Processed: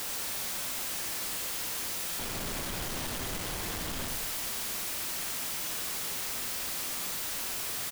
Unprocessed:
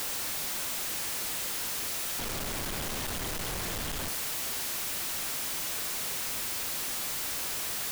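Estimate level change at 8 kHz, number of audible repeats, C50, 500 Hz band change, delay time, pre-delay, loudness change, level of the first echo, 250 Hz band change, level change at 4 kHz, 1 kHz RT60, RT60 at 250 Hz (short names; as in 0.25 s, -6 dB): -1.5 dB, 1, 5.5 dB, -1.0 dB, 86 ms, 13 ms, -1.0 dB, -11.0 dB, 0.0 dB, -1.0 dB, 1.6 s, 1.9 s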